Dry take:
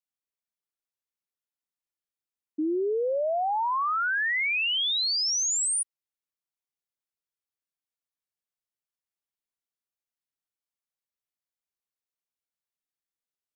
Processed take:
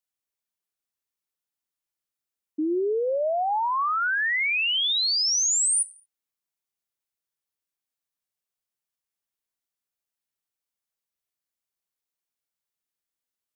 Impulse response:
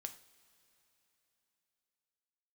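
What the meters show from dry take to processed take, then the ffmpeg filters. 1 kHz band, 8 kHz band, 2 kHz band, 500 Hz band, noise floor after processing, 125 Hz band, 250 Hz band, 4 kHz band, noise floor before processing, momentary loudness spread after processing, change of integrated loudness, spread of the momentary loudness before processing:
+2.0 dB, +4.0 dB, +2.0 dB, +2.0 dB, below −85 dBFS, can't be measured, +2.0 dB, +2.5 dB, below −85 dBFS, 7 LU, +2.5 dB, 6 LU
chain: -filter_complex "[0:a]asplit=2[link_01][link_02];[link_02]highshelf=frequency=4400:gain=11[link_03];[1:a]atrim=start_sample=2205,afade=type=out:start_time=0.28:duration=0.01,atrim=end_sample=12789[link_04];[link_03][link_04]afir=irnorm=-1:irlink=0,volume=-8.5dB[link_05];[link_01][link_05]amix=inputs=2:normalize=0"

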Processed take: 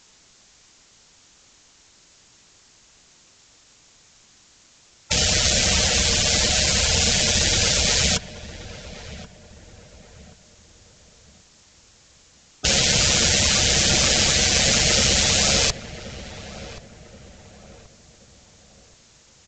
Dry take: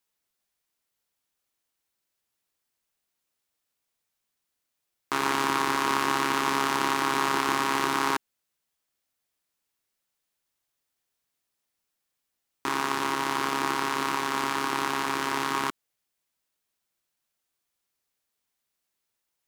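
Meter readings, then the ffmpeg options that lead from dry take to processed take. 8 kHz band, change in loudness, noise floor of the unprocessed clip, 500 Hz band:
+19.5 dB, +9.5 dB, −82 dBFS, +6.0 dB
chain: -filter_complex "[0:a]aemphasis=mode=production:type=50fm,afftfilt=real='re*lt(hypot(re,im),0.0251)':imag='im*lt(hypot(re,im),0.0251)':win_size=1024:overlap=0.75,lowshelf=frequency=290:gain=9.5,apsyclip=27dB,volume=3.5dB,asoftclip=hard,volume=-3.5dB,asplit=2[link_01][link_02];[link_02]adelay=1078,lowpass=frequency=1400:poles=1,volume=-13dB,asplit=2[link_03][link_04];[link_04]adelay=1078,lowpass=frequency=1400:poles=1,volume=0.41,asplit=2[link_05][link_06];[link_06]adelay=1078,lowpass=frequency=1400:poles=1,volume=0.41,asplit=2[link_07][link_08];[link_08]adelay=1078,lowpass=frequency=1400:poles=1,volume=0.41[link_09];[link_01][link_03][link_05][link_07][link_09]amix=inputs=5:normalize=0,aresample=16000,aresample=44100"

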